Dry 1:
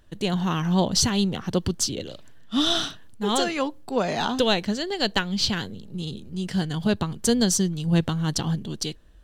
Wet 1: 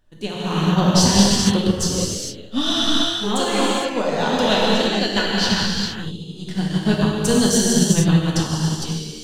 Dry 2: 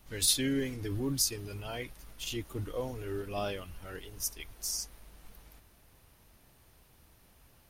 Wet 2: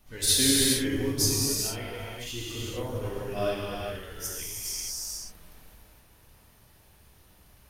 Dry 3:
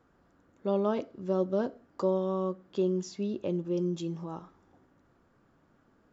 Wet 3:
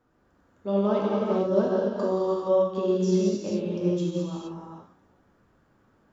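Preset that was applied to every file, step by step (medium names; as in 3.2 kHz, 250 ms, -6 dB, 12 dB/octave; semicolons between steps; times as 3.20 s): gated-style reverb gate 490 ms flat, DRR -6.5 dB; upward expansion 1.5:1, over -31 dBFS; trim +1.5 dB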